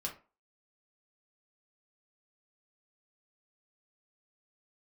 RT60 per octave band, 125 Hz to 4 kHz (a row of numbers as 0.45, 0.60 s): 0.30, 0.35, 0.35, 0.35, 0.30, 0.20 s